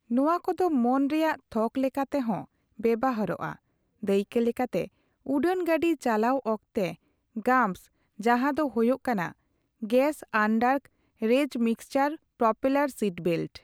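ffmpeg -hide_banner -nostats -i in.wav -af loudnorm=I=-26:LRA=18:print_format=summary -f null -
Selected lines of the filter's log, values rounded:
Input Integrated:    -27.2 LUFS
Input True Peak:     -10.4 dBTP
Input LRA:             2.3 LU
Input Threshold:     -37.6 LUFS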